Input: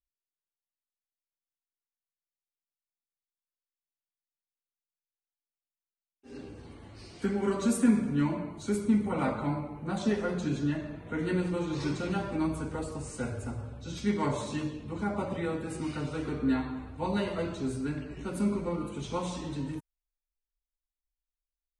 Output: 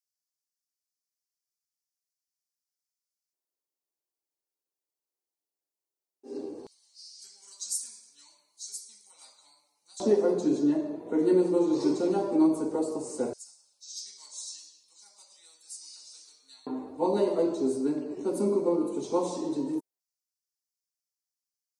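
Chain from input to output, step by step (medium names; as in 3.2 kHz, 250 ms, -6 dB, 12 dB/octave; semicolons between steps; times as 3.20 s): high-order bell 2.1 kHz -13 dB; LFO high-pass square 0.15 Hz 350–5200 Hz; trim +3 dB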